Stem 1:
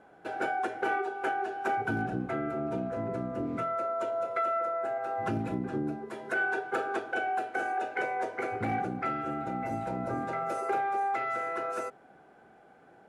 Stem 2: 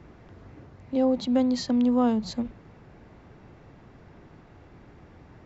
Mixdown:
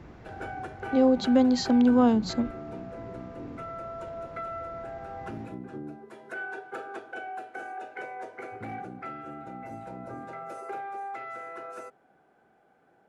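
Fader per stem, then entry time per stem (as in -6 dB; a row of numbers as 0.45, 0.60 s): -7.0, +2.0 dB; 0.00, 0.00 s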